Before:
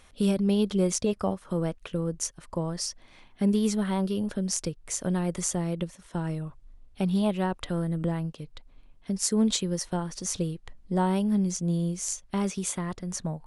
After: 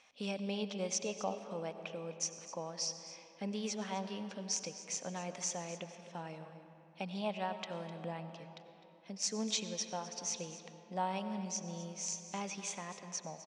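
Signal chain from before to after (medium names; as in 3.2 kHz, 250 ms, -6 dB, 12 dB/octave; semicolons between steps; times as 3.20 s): cabinet simulation 310–6800 Hz, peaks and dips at 360 Hz -10 dB, 780 Hz +5 dB, 1.4 kHz -4 dB, 2.5 kHz +8 dB, 5.8 kHz +7 dB; delay 255 ms -15 dB; on a send at -9.5 dB: reverberation RT60 3.6 s, pre-delay 55 ms; on the sum: trim -8 dB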